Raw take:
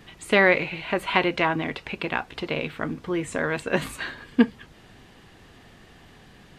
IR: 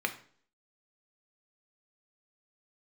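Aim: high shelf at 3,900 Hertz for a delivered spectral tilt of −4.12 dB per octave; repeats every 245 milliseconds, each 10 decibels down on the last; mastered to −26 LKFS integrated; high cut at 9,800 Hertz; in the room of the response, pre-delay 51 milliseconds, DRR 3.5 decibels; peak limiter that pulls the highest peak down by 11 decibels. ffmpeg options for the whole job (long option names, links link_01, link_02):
-filter_complex "[0:a]lowpass=9800,highshelf=frequency=3900:gain=8,alimiter=limit=-13dB:level=0:latency=1,aecho=1:1:245|490|735|980:0.316|0.101|0.0324|0.0104,asplit=2[link_01][link_02];[1:a]atrim=start_sample=2205,adelay=51[link_03];[link_02][link_03]afir=irnorm=-1:irlink=0,volume=-10.5dB[link_04];[link_01][link_04]amix=inputs=2:normalize=0,volume=-0.5dB"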